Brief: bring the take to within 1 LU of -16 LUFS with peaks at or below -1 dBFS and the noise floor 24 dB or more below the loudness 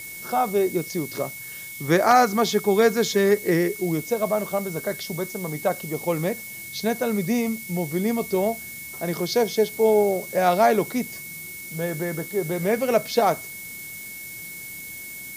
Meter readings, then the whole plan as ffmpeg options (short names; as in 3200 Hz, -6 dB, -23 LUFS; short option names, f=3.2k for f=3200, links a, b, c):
steady tone 2200 Hz; tone level -38 dBFS; noise floor -37 dBFS; noise floor target -48 dBFS; loudness -23.5 LUFS; peak -4.0 dBFS; loudness target -16.0 LUFS
-> -af "bandreject=f=2.2k:w=30"
-af "afftdn=nr=11:nf=-37"
-af "volume=7.5dB,alimiter=limit=-1dB:level=0:latency=1"